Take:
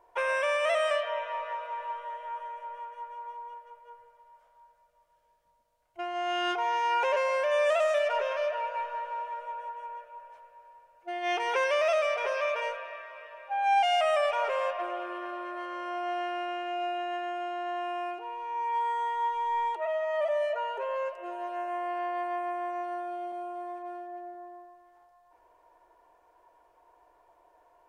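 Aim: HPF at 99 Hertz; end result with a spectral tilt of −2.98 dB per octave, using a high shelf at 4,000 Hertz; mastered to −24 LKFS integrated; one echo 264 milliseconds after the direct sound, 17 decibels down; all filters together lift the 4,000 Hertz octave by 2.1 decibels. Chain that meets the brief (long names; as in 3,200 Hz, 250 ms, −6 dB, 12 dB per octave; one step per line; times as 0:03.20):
high-pass filter 99 Hz
high-shelf EQ 4,000 Hz −7.5 dB
parametric band 4,000 Hz +8 dB
single-tap delay 264 ms −17 dB
level +6.5 dB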